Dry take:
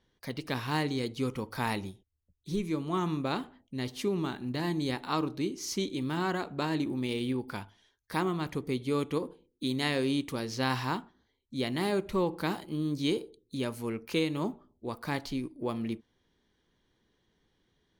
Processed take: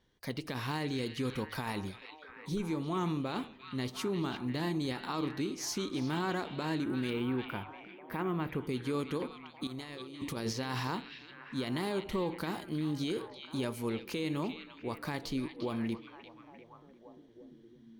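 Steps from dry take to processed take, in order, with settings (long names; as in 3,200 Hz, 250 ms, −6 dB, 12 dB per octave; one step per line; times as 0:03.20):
0:07.10–0:08.61: flat-topped bell 6,100 Hz −14.5 dB
0:09.67–0:10.53: compressor whose output falls as the input rises −37 dBFS, ratio −0.5
brickwall limiter −26 dBFS, peak gain reduction 11 dB
echo through a band-pass that steps 348 ms, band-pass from 2,900 Hz, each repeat −0.7 octaves, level −5 dB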